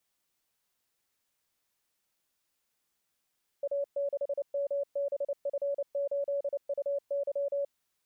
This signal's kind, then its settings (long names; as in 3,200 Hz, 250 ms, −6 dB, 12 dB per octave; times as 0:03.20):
Morse code "A6MBF8UY" 29 words per minute 564 Hz −28 dBFS